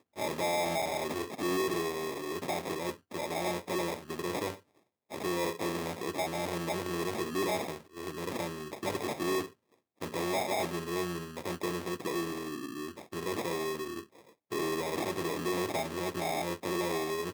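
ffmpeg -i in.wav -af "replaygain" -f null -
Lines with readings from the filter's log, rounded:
track_gain = +15.0 dB
track_peak = 0.070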